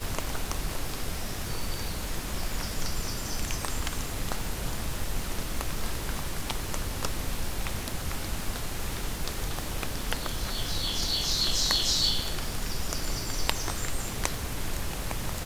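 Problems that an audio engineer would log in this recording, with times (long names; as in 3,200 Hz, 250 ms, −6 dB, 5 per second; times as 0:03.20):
surface crackle 570 per second −36 dBFS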